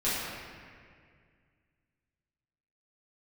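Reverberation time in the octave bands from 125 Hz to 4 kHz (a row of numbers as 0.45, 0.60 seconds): 2.8, 2.4, 2.2, 1.9, 2.1, 1.4 seconds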